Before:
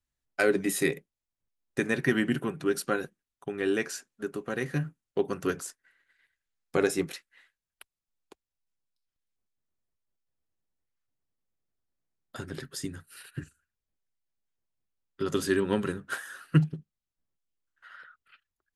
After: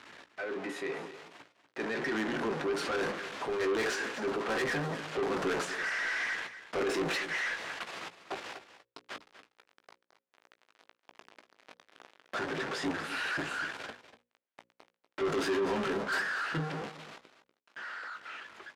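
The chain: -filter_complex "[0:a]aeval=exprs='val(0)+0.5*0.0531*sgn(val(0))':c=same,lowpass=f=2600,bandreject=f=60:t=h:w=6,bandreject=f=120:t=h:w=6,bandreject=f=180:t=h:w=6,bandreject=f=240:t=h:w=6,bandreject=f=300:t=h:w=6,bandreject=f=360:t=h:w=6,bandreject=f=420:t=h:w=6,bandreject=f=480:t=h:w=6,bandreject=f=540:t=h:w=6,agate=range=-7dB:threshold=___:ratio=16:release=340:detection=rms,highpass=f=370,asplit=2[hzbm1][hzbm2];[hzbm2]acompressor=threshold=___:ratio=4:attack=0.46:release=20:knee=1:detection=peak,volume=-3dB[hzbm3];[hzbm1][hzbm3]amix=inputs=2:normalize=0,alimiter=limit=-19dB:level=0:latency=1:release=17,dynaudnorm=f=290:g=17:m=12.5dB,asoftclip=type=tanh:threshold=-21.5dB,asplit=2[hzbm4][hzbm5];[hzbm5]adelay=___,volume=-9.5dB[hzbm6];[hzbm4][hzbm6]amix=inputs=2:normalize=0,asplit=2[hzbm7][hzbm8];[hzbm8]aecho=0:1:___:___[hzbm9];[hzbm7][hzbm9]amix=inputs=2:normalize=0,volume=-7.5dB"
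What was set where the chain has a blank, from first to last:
-27dB, -40dB, 18, 242, 0.211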